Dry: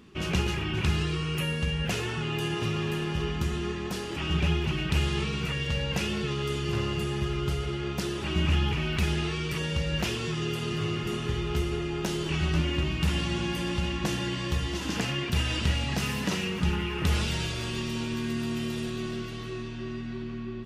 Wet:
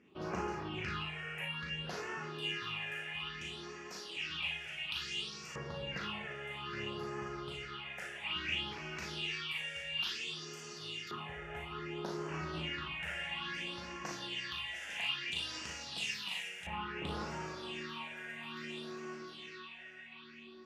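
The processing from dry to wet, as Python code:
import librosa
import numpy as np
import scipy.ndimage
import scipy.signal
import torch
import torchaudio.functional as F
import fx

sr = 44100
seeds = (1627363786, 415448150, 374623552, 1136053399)

y = fx.phaser_stages(x, sr, stages=6, low_hz=280.0, high_hz=3500.0, hz=0.59, feedback_pct=30)
y = fx.room_early_taps(y, sr, ms=(38, 57), db=(-4.5, -7.0))
y = fx.filter_lfo_bandpass(y, sr, shape='saw_up', hz=0.18, low_hz=980.0, high_hz=4600.0, q=0.97)
y = y * 10.0 ** (-1.5 / 20.0)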